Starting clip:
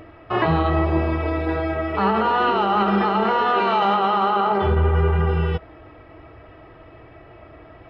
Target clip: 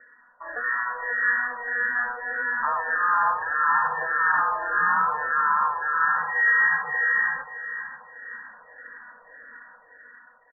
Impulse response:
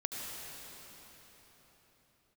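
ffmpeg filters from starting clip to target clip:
-filter_complex "[0:a]dynaudnorm=f=170:g=9:m=3.35,asplit=2[s0][s1];[s1]aecho=0:1:398|796|1194|1592|1990:0.266|0.122|0.0563|0.0259|0.0119[s2];[s0][s2]amix=inputs=2:normalize=0,lowpass=f=2200:t=q:w=0.5098,lowpass=f=2200:t=q:w=0.6013,lowpass=f=2200:t=q:w=0.9,lowpass=f=2200:t=q:w=2.563,afreqshift=-2600,asetrate=33075,aresample=44100,asplit=2[s3][s4];[s4]afreqshift=-1.7[s5];[s3][s5]amix=inputs=2:normalize=1,volume=0.355"

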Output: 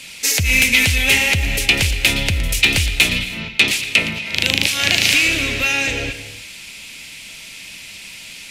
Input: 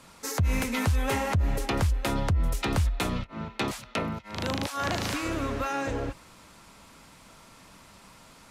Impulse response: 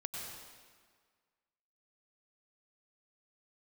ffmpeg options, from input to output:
-filter_complex "[0:a]highshelf=f=1700:t=q:w=3:g=13,asplit=2[s0][s1];[1:a]atrim=start_sample=2205,afade=t=out:st=0.26:d=0.01,atrim=end_sample=11907,adelay=116[s2];[s1][s2]afir=irnorm=-1:irlink=0,volume=0.282[s3];[s0][s3]amix=inputs=2:normalize=0,acontrast=41,volume=0.891"

